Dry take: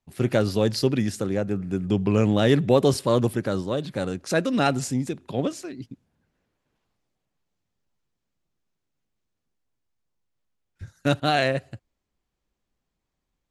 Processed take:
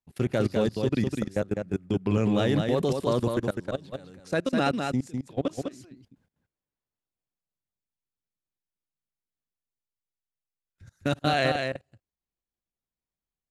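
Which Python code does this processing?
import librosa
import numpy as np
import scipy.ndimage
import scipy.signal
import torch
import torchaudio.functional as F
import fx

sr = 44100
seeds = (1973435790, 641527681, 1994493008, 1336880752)

y = fx.level_steps(x, sr, step_db=24)
y = y + 10.0 ** (-5.0 / 20.0) * np.pad(y, (int(203 * sr / 1000.0), 0))[:len(y)]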